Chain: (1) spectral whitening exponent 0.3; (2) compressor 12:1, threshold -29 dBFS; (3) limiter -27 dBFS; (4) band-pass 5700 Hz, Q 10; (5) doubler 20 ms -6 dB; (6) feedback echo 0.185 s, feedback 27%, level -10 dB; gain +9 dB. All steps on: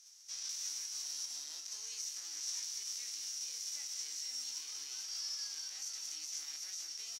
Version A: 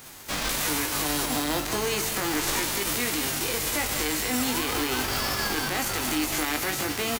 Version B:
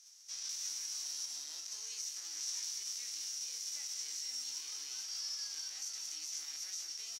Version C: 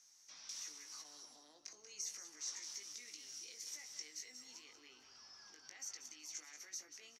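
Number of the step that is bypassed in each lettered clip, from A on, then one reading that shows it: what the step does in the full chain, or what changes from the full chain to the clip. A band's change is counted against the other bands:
4, 1 kHz band +24.0 dB; 2, mean gain reduction 3.0 dB; 1, 4 kHz band -8.5 dB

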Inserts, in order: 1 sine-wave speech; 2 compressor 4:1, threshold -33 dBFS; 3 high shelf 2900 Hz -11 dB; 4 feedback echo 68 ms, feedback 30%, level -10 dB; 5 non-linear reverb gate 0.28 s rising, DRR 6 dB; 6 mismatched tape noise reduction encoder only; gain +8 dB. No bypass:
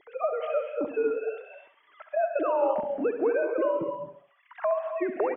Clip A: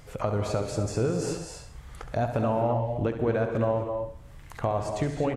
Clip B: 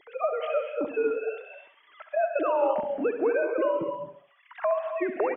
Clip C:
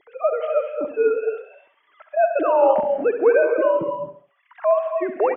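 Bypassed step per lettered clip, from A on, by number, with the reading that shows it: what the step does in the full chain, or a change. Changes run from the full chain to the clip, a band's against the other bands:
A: 1, 250 Hz band +5.5 dB; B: 3, 2 kHz band +2.5 dB; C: 2, mean gain reduction 5.0 dB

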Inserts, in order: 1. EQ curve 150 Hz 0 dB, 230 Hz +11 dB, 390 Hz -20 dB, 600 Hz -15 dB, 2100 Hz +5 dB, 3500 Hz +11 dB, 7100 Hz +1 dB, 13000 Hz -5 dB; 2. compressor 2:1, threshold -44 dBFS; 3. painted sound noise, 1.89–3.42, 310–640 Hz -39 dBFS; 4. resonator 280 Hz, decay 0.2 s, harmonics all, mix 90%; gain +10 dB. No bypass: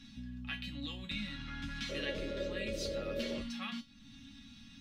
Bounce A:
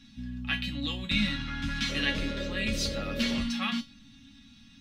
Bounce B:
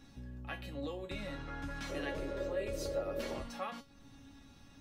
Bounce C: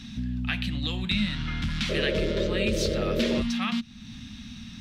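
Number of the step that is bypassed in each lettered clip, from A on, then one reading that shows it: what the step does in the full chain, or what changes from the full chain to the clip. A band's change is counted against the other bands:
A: 2, mean gain reduction 7.5 dB; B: 1, 1 kHz band +7.5 dB; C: 4, 125 Hz band +4.5 dB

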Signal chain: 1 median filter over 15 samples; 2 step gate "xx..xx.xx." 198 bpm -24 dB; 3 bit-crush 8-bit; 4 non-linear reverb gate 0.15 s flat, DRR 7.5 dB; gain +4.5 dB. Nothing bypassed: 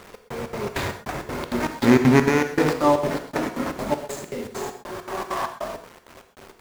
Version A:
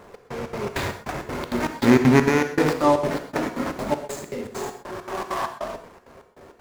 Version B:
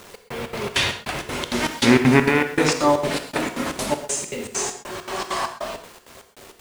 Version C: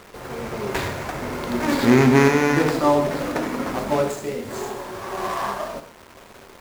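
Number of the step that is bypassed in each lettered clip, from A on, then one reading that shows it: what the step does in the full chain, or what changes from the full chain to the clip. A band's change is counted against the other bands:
3, distortion -25 dB; 1, 8 kHz band +10.0 dB; 2, loudness change +2.0 LU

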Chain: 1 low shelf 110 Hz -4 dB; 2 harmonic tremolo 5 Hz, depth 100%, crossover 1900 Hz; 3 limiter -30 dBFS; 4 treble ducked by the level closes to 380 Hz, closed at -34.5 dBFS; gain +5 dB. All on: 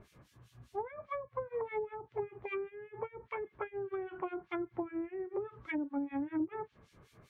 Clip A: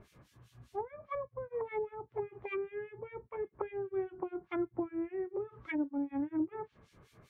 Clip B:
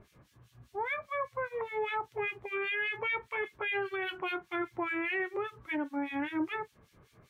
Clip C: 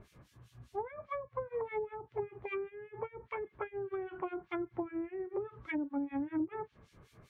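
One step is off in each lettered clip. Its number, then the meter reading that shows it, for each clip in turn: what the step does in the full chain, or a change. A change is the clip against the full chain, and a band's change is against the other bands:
3, crest factor change +3.5 dB; 4, 2 kHz band +13.0 dB; 1, 125 Hz band +2.0 dB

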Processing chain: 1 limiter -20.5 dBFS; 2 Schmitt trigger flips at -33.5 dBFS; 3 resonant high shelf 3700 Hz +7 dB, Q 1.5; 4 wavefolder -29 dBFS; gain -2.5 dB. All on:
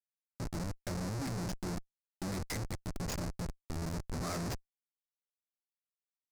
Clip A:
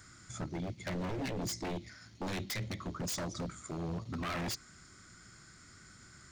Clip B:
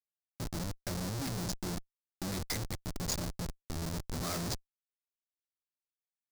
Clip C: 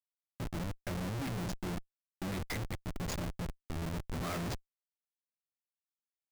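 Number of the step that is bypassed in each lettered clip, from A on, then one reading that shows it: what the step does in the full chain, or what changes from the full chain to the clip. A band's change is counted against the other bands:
2, 125 Hz band -3.5 dB; 4, distortion -9 dB; 3, 8 kHz band -3.5 dB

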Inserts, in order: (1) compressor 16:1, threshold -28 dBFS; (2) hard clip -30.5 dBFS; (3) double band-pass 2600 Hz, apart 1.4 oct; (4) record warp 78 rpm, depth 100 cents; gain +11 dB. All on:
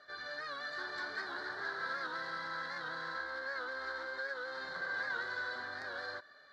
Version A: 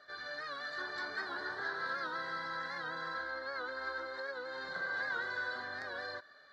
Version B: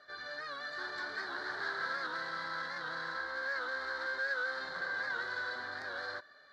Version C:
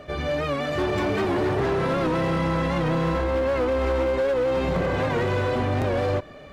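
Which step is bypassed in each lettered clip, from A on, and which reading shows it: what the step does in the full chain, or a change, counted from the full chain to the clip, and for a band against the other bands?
2, distortion -13 dB; 1, mean gain reduction 2.0 dB; 3, 125 Hz band +23.0 dB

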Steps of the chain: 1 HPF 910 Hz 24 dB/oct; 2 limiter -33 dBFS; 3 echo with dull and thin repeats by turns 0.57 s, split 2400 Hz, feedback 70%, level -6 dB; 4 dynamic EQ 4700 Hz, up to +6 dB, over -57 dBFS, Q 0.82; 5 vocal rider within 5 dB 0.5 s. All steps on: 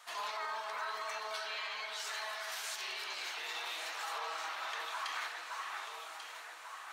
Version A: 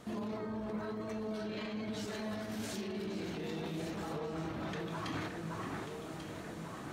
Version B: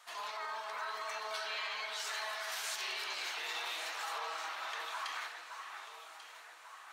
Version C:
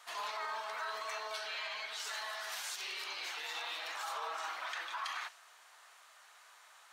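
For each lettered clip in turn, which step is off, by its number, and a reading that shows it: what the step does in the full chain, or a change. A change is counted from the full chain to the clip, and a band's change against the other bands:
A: 1, 250 Hz band +37.5 dB; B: 5, momentary loudness spread change +6 LU; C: 3, momentary loudness spread change +13 LU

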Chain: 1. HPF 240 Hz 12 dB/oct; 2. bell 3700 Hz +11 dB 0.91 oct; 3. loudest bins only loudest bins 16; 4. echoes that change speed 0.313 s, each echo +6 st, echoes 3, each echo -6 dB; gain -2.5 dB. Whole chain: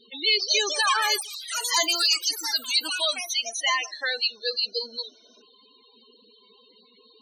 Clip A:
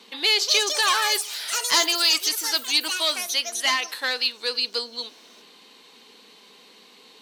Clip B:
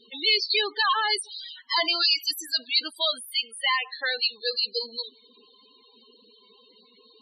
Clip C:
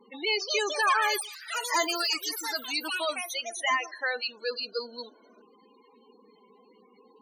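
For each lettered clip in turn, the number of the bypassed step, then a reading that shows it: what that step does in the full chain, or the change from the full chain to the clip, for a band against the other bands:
3, 250 Hz band +3.0 dB; 4, 8 kHz band -12.0 dB; 2, 4 kHz band -8.5 dB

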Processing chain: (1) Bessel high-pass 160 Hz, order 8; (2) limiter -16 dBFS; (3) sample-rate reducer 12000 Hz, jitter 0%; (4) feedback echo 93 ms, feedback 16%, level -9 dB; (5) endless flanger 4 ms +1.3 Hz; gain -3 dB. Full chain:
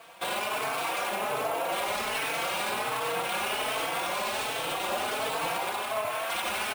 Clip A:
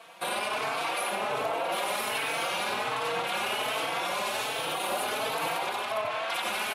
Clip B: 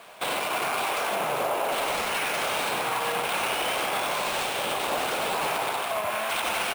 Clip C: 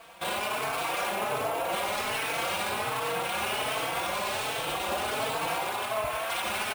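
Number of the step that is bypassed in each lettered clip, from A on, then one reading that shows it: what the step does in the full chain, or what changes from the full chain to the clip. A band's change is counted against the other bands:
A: 3, distortion -2 dB; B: 5, loudness change +3.0 LU; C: 1, 125 Hz band +4.0 dB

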